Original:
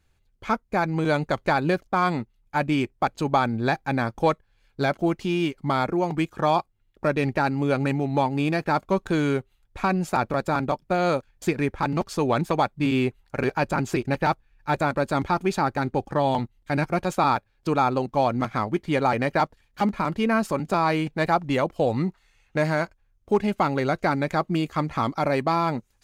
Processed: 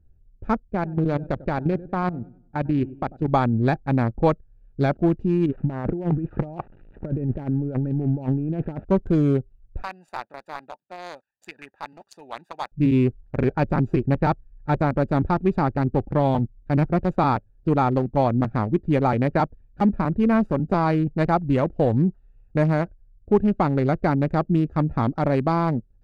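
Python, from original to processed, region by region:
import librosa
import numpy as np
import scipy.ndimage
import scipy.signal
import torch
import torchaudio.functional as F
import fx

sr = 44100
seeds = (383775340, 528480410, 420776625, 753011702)

y = fx.chain(x, sr, fx.lowpass(hz=6300.0, slope=12),
    fx.level_steps(step_db=12),
    fx.echo_warbled(ms=97, feedback_pct=36, rate_hz=2.8, cents=77, wet_db=-16.0), at=(0.7, 3.28))
y = fx.chain(y, sr, fx.crossing_spikes(level_db=-21.5),
    fx.lowpass(hz=2200.0, slope=24),
    fx.over_compress(threshold_db=-29.0, ratio=-1.0), at=(5.46, 8.85))
y = fx.chain(y, sr, fx.highpass(hz=1300.0, slope=12),
    fx.high_shelf(hz=6200.0, db=11.0),
    fx.comb(ms=1.1, depth=0.42), at=(9.82, 12.72))
y = fx.wiener(y, sr, points=41)
y = fx.tilt_eq(y, sr, slope=-2.5)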